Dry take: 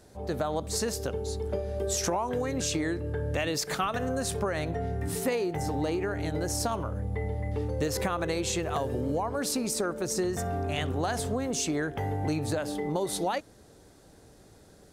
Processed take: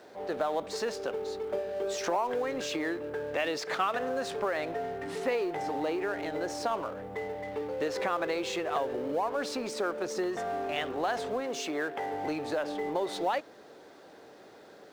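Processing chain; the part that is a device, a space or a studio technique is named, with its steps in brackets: phone line with mismatched companding (BPF 390–3300 Hz; G.711 law mismatch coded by mu); 11.4–12.14 HPF 190 Hz 6 dB/oct

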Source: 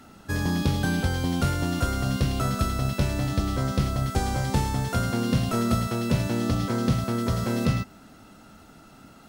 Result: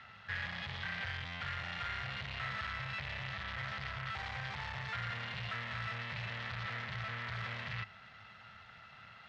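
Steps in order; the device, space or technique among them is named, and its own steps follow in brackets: scooped metal amplifier (tube stage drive 38 dB, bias 0.7; speaker cabinet 100–3500 Hz, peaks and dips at 110 Hz +7 dB, 310 Hz -4 dB, 1900 Hz +8 dB; passive tone stack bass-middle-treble 10-0-10); gain +8.5 dB

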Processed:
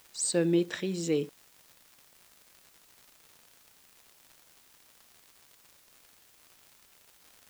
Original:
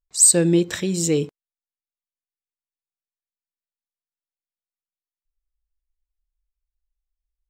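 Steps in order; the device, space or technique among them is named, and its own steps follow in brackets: 78 rpm shellac record (BPF 190–4600 Hz; crackle 140/s -36 dBFS; white noise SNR 25 dB); gain -7 dB

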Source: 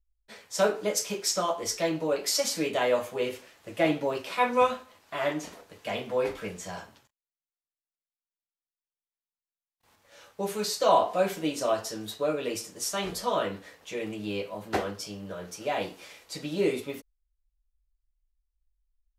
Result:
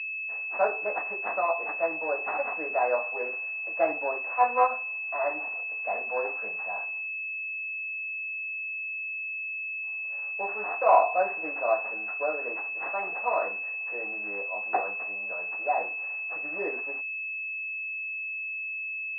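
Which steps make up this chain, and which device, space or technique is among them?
toy sound module (decimation joined by straight lines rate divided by 4×; pulse-width modulation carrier 2600 Hz; speaker cabinet 620–4300 Hz, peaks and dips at 740 Hz +9 dB, 1100 Hz +4 dB, 1800 Hz +5 dB, 3700 Hz -7 dB)

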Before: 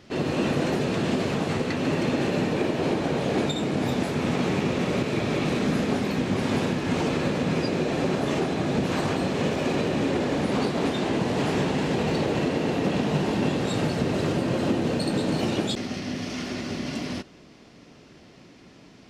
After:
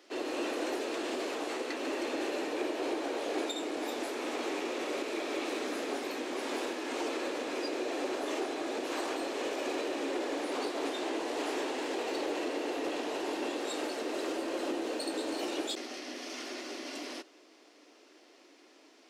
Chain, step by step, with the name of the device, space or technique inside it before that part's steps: elliptic high-pass 300 Hz, stop band 60 dB; parallel distortion (in parallel at -13 dB: hard clip -30 dBFS, distortion -8 dB); on the sum: high shelf 6700 Hz +7.5 dB; gain -8 dB

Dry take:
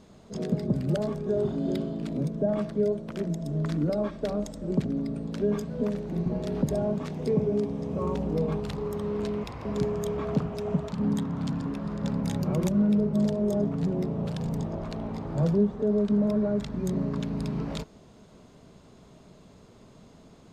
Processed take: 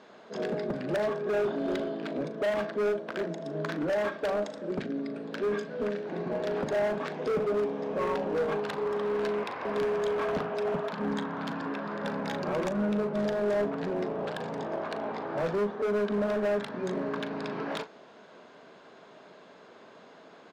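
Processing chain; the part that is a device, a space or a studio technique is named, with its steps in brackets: 4.48–6.06 dynamic EQ 870 Hz, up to -7 dB, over -44 dBFS, Q 1; megaphone (BPF 460–3400 Hz; bell 1600 Hz +7.5 dB 0.26 oct; hard clip -32 dBFS, distortion -10 dB; doubler 39 ms -13 dB); gain +6.5 dB

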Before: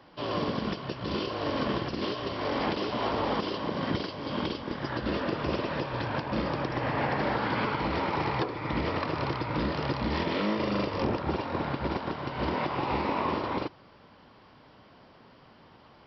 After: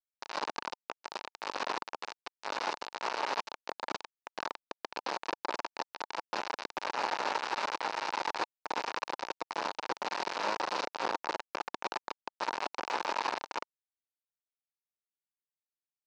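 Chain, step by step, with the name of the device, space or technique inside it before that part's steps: hand-held game console (bit-crush 4-bit; speaker cabinet 490–5200 Hz, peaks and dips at 900 Hz +7 dB, 2000 Hz -4 dB, 3300 Hz -7 dB); gain -3.5 dB

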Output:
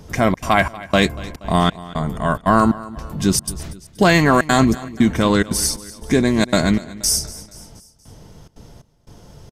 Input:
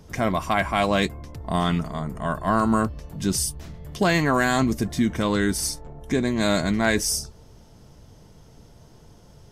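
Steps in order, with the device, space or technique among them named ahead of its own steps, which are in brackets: trance gate with a delay (step gate "xxxx.xxx...x" 177 bpm -60 dB; feedback echo 0.238 s, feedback 51%, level -18.5 dB); gain +7 dB

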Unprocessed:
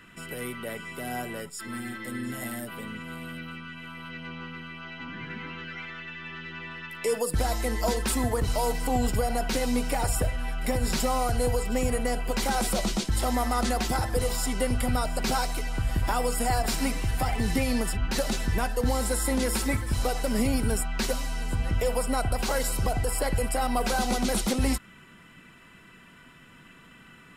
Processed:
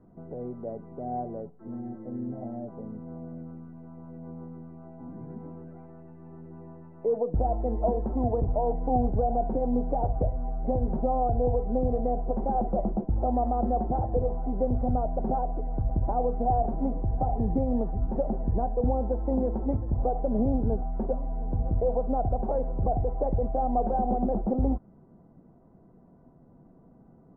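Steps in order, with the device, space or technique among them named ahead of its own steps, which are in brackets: under water (LPF 680 Hz 24 dB/oct; bell 750 Hz +8 dB 0.54 oct)

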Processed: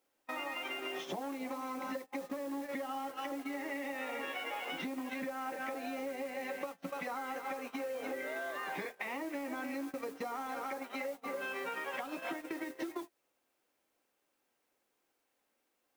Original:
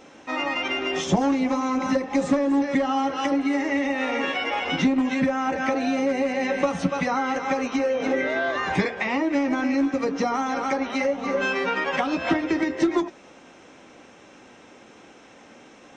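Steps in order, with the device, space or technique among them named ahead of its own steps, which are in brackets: baby monitor (BPF 330–4000 Hz; compressor 8:1, threshold -30 dBFS, peak gain reduction 12.5 dB; white noise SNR 17 dB; gate -35 dBFS, range -26 dB); gain -6.5 dB

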